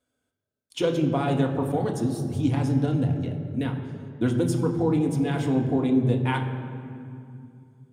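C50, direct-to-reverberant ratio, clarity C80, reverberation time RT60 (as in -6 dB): 7.5 dB, 2.0 dB, 8.0 dB, 2.4 s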